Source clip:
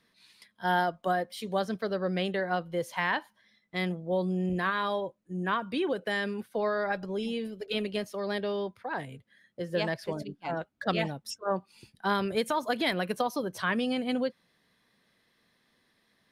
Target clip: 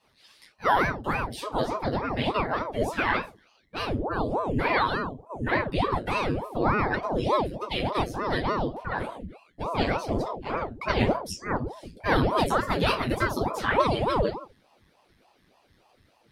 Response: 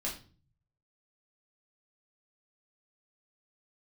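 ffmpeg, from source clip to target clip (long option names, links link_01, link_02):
-filter_complex "[0:a]asubboost=boost=3.5:cutoff=190[link_01];[1:a]atrim=start_sample=2205,afade=type=out:start_time=0.44:duration=0.01,atrim=end_sample=19845,asetrate=70560,aresample=44100[link_02];[link_01][link_02]afir=irnorm=-1:irlink=0,aeval=exprs='val(0)*sin(2*PI*450*n/s+450*0.9/3.4*sin(2*PI*3.4*n/s))':channel_layout=same,volume=7.5dB"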